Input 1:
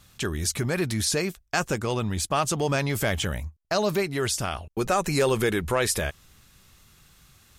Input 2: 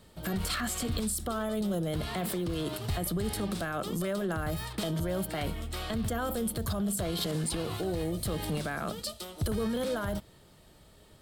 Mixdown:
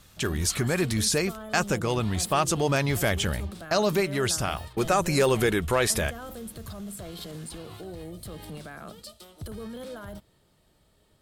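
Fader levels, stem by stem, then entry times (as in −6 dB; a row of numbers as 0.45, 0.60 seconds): +0.5, −7.5 decibels; 0.00, 0.00 seconds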